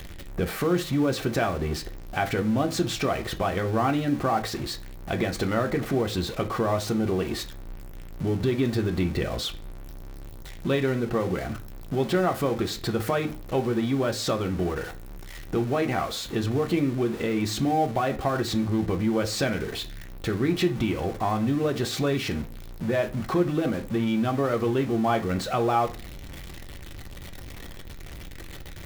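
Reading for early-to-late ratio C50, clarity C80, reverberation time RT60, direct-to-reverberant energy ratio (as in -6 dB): 16.5 dB, 22.5 dB, 0.40 s, 4.5 dB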